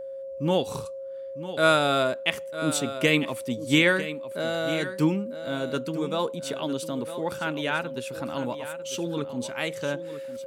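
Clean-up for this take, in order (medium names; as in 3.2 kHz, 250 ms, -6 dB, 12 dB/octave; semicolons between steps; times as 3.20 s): band-stop 540 Hz, Q 30; inverse comb 951 ms -12.5 dB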